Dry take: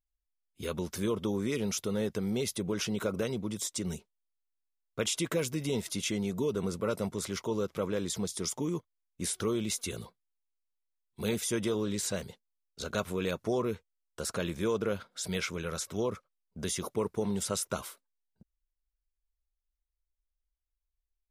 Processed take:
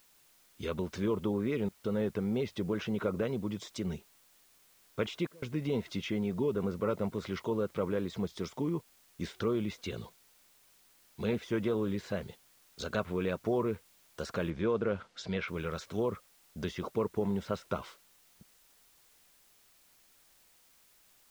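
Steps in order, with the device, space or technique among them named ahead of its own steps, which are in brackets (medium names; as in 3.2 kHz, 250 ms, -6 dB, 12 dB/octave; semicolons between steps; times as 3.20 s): low-pass that closes with the level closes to 2.3 kHz, closed at -29.5 dBFS; worn cassette (low-pass 6.6 kHz; wow and flutter; level dips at 1.69/5.27 s, 151 ms -26 dB; white noise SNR 29 dB); 14.50–15.48 s: low-pass 5.3 kHz 12 dB/octave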